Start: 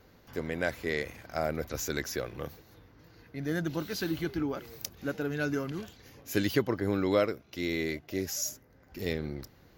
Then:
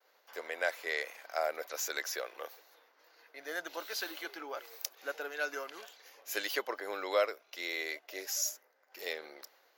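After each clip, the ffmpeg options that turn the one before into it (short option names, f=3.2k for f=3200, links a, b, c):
-af "agate=range=-33dB:threshold=-54dB:ratio=3:detection=peak,highpass=f=540:w=0.5412,highpass=f=540:w=1.3066"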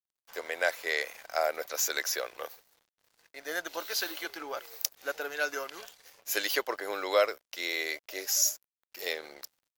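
-af "aeval=exprs='sgn(val(0))*max(abs(val(0))-0.001,0)':c=same,bass=f=250:g=1,treble=f=4k:g=4,volume=4.5dB"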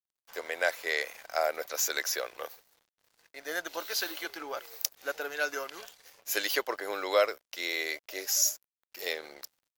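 -af anull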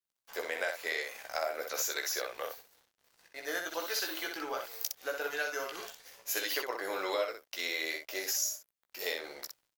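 -filter_complex "[0:a]acompressor=threshold=-32dB:ratio=5,asplit=2[a][b];[b]aecho=0:1:16|62:0.531|0.562[c];[a][c]amix=inputs=2:normalize=0"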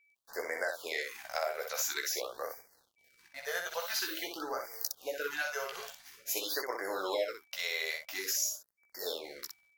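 -af "aeval=exprs='val(0)+0.000447*sin(2*PI*2300*n/s)':c=same,afftfilt=real='re*(1-between(b*sr/1024,260*pow(3300/260,0.5+0.5*sin(2*PI*0.48*pts/sr))/1.41,260*pow(3300/260,0.5+0.5*sin(2*PI*0.48*pts/sr))*1.41))':imag='im*(1-between(b*sr/1024,260*pow(3300/260,0.5+0.5*sin(2*PI*0.48*pts/sr))/1.41,260*pow(3300/260,0.5+0.5*sin(2*PI*0.48*pts/sr))*1.41))':win_size=1024:overlap=0.75"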